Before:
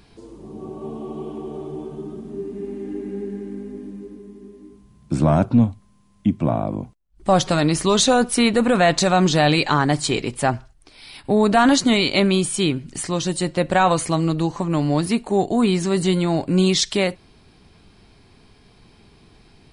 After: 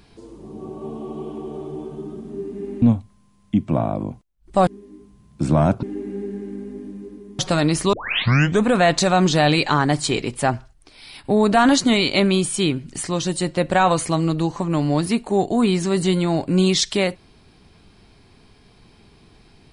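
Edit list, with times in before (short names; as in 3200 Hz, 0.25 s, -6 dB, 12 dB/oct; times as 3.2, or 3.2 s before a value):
2.82–4.38 swap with 5.54–7.39
7.93 tape start 0.74 s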